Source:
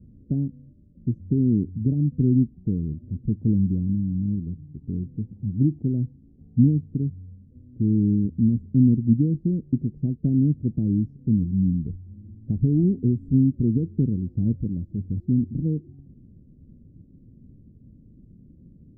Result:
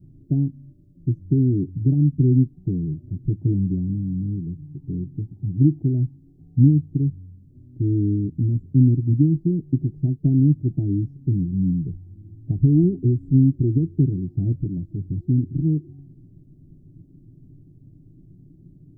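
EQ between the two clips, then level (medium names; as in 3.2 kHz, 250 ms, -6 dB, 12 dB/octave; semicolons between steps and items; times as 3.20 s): static phaser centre 330 Hz, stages 8; +5.0 dB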